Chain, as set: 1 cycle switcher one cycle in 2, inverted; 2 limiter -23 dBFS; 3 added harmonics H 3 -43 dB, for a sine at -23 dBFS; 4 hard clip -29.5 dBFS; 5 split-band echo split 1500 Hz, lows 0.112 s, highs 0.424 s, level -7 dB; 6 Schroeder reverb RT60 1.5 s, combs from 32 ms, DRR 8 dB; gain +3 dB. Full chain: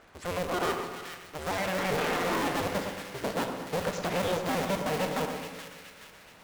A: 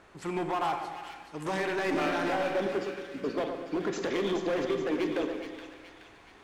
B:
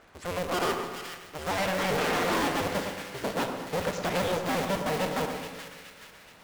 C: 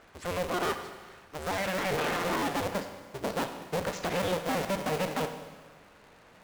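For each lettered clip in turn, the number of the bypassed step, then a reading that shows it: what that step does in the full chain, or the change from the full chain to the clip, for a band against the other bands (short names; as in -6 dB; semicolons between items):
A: 1, 8 kHz band -7.0 dB; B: 2, mean gain reduction 2.5 dB; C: 5, echo-to-direct -3.5 dB to -8.0 dB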